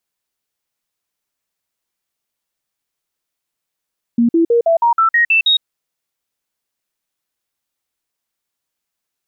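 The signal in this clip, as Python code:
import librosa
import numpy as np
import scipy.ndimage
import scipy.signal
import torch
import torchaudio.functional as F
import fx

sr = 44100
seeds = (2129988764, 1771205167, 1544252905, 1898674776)

y = fx.stepped_sweep(sr, from_hz=235.0, direction='up', per_octave=2, tones=9, dwell_s=0.11, gap_s=0.05, level_db=-9.0)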